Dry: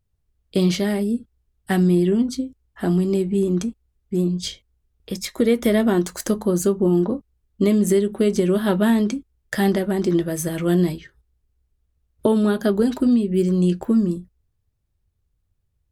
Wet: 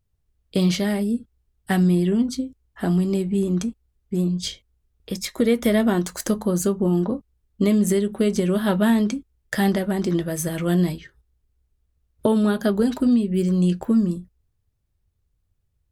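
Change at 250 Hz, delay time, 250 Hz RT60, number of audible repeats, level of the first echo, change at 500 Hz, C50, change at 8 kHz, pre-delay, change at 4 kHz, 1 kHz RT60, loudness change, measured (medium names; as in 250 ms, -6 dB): -1.0 dB, no echo, no reverb, no echo, no echo, -3.0 dB, no reverb, 0.0 dB, no reverb, 0.0 dB, no reverb, -1.5 dB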